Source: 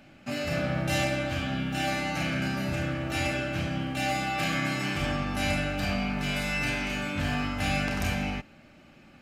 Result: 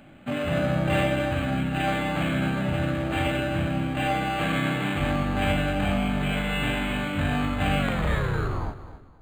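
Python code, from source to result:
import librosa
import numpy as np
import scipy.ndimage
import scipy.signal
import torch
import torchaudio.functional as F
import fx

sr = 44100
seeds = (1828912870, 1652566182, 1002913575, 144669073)

y = fx.tape_stop_end(x, sr, length_s=1.44)
y = fx.echo_feedback(y, sr, ms=262, feedback_pct=28, wet_db=-14.0)
y = np.interp(np.arange(len(y)), np.arange(len(y))[::8], y[::8])
y = y * 10.0 ** (4.5 / 20.0)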